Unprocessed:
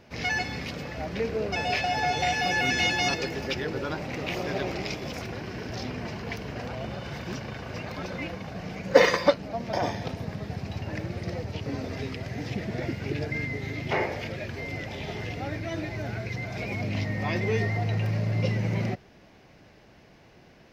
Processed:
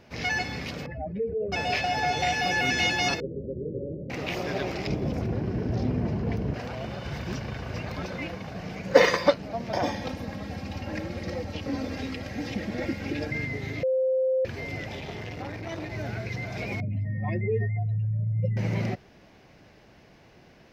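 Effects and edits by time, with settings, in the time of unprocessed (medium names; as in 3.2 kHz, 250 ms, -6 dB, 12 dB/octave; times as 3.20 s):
0.86–1.52 s: spectral contrast enhancement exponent 2.3
3.20–4.10 s: rippled Chebyshev low-pass 570 Hz, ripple 3 dB
4.87–6.54 s: tilt shelf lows +10 dB, about 810 Hz
7.05–8.05 s: bass shelf 86 Hz +10.5 dB
9.83–13.31 s: comb 3.7 ms
13.83–14.45 s: bleep 521 Hz -21 dBFS
15.00–15.92 s: transformer saturation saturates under 610 Hz
16.80–18.57 s: spectral contrast enhancement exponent 2.2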